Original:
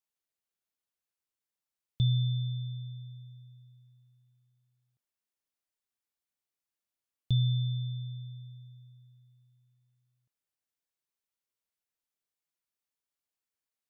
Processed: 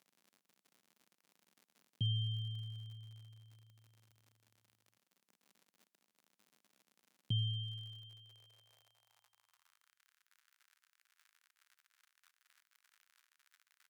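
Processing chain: pitch shift -2 st; crackle 89/s -51 dBFS; high-pass sweep 200 Hz -> 1500 Hz, 7.39–9.97; gain -1.5 dB

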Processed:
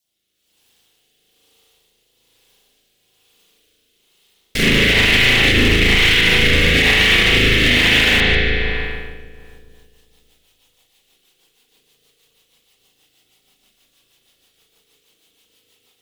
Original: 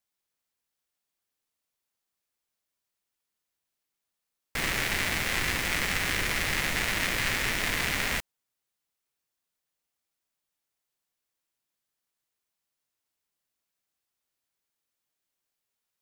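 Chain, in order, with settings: formant sharpening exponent 1.5; resonant high shelf 2300 Hz +11.5 dB, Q 1.5; AGC gain up to 11 dB; bell 290 Hz +7 dB 2 oct; notch 2400 Hz, Q 26; on a send: darkening echo 0.146 s, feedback 67%, low-pass 2600 Hz, level -3 dB; on the sum: spring tank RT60 1.4 s, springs 37 ms, chirp 70 ms, DRR -10 dB; rotary speaker horn 1.1 Hz, later 6.3 Hz, at 9.18; maximiser +5 dB; gain -3 dB

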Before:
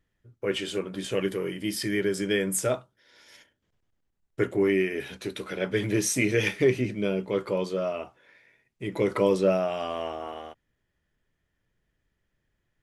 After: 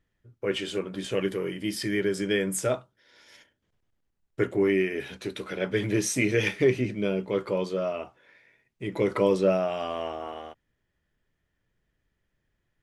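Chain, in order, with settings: high shelf 10000 Hz -7.5 dB

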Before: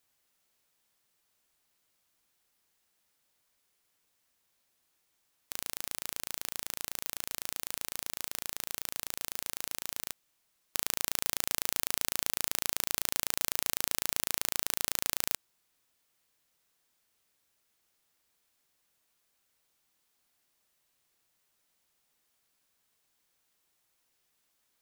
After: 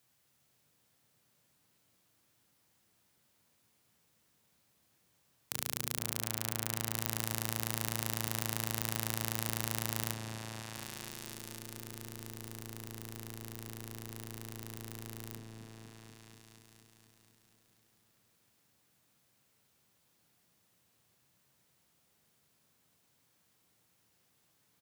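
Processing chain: HPF 81 Hz; bell 120 Hz +12 dB 2 oct; notches 50/100/150/200/250/300/350/400/450 Hz; negative-ratio compressor -39 dBFS, ratio -0.5; doubler 28 ms -13.5 dB; repeats that get brighter 0.242 s, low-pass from 400 Hz, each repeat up 1 oct, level 0 dB; gain -2 dB

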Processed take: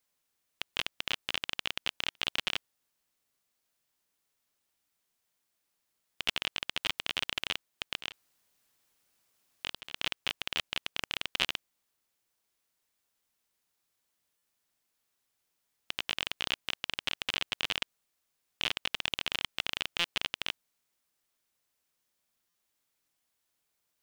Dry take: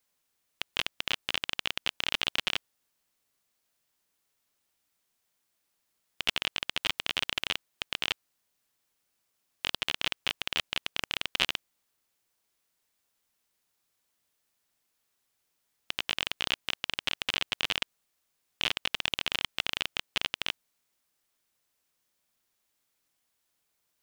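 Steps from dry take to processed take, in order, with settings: 7.98–10 negative-ratio compressor -36 dBFS, ratio -0.5; stuck buffer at 2.1/14.37/19.99/22.49, samples 256, times 8; gain -2.5 dB

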